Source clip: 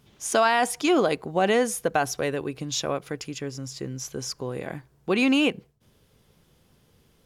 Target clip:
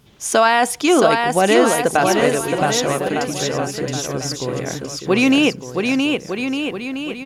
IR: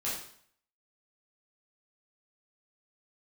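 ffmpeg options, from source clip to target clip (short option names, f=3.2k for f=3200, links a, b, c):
-af "aecho=1:1:670|1206|1635|1978|2252:0.631|0.398|0.251|0.158|0.1,volume=6.5dB"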